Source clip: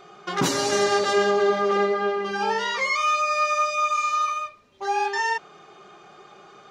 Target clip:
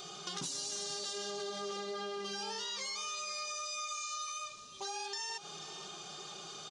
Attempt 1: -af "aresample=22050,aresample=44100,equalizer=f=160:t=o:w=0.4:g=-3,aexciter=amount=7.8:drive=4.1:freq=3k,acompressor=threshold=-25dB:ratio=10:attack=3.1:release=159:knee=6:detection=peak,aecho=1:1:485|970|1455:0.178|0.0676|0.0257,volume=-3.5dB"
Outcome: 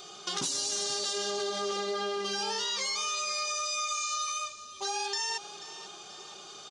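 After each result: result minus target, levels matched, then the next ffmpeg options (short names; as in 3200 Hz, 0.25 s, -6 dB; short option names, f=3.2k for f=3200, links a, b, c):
compressor: peak gain reduction -7.5 dB; 125 Hz band -6.0 dB
-af "aresample=22050,aresample=44100,equalizer=f=160:t=o:w=0.4:g=-3,aexciter=amount=7.8:drive=4.1:freq=3k,acompressor=threshold=-33.5dB:ratio=10:attack=3.1:release=159:knee=6:detection=peak,aecho=1:1:485|970|1455:0.178|0.0676|0.0257,volume=-3.5dB"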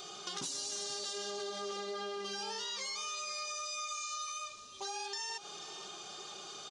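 125 Hz band -5.0 dB
-af "aresample=22050,aresample=44100,equalizer=f=160:t=o:w=0.4:g=7.5,aexciter=amount=7.8:drive=4.1:freq=3k,acompressor=threshold=-33.5dB:ratio=10:attack=3.1:release=159:knee=6:detection=peak,aecho=1:1:485|970|1455:0.178|0.0676|0.0257,volume=-3.5dB"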